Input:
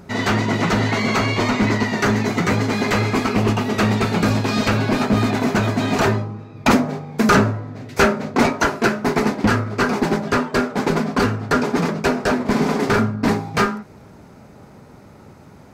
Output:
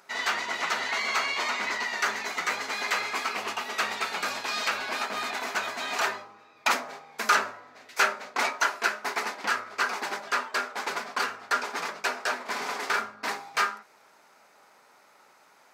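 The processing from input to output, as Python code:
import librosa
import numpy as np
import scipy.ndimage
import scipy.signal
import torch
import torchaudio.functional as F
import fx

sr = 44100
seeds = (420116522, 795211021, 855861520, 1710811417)

y = scipy.signal.sosfilt(scipy.signal.butter(2, 990.0, 'highpass', fs=sr, output='sos'), x)
y = y * 10.0 ** (-4.0 / 20.0)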